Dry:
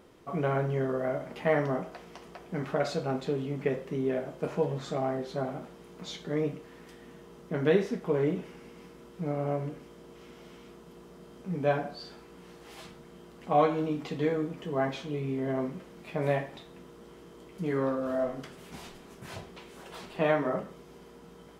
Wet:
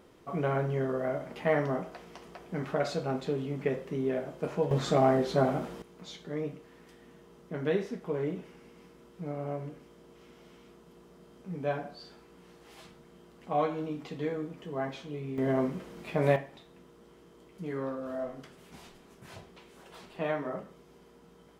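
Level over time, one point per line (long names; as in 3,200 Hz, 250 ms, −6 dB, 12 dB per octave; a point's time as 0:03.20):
−1 dB
from 0:04.71 +7 dB
from 0:05.82 −5 dB
from 0:15.38 +3 dB
from 0:16.36 −6 dB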